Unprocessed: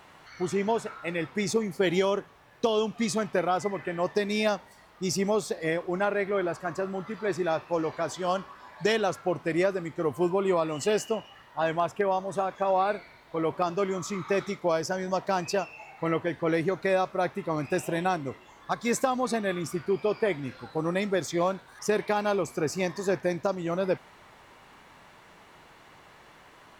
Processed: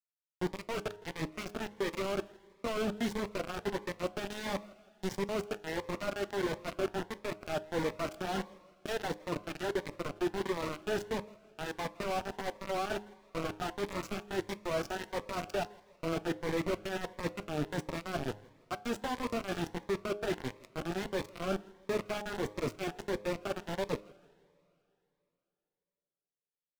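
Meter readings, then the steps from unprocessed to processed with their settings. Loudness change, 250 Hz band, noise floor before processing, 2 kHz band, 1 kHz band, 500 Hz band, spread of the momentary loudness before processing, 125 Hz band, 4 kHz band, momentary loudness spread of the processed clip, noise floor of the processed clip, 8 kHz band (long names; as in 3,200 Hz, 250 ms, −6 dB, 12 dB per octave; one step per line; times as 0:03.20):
−8.5 dB, −7.5 dB, −54 dBFS, −7.0 dB, −9.0 dB, −9.0 dB, 6 LU, −6.5 dB, −5.0 dB, 6 LU, below −85 dBFS, −10.0 dB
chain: reversed playback
downward compressor 16 to 1, threshold −32 dBFS, peak gain reduction 13.5 dB
reversed playback
flanger 0.12 Hz, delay 5.5 ms, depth 5.6 ms, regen −21%
bit-depth reduction 6 bits, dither none
low-pass filter 1,900 Hz 6 dB per octave
hum removal 103.5 Hz, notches 11
on a send: repeating echo 163 ms, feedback 41%, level −24 dB
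on the sum: coupled-rooms reverb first 0.24 s, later 3.1 s, from −18 dB, DRR 16 dB
phaser whose notches keep moving one way rising 1.5 Hz
level +6 dB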